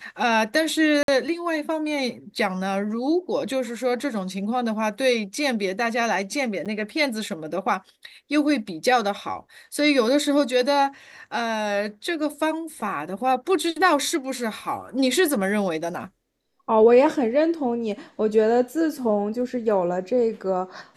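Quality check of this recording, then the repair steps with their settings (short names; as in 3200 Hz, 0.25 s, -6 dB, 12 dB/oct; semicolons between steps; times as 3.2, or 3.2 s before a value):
1.03–1.08 gap 52 ms
6.65–6.66 gap 7.2 ms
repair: interpolate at 1.03, 52 ms; interpolate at 6.65, 7.2 ms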